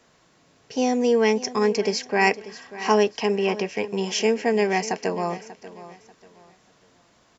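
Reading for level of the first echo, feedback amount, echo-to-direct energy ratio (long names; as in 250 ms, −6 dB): −16.0 dB, 29%, −15.5 dB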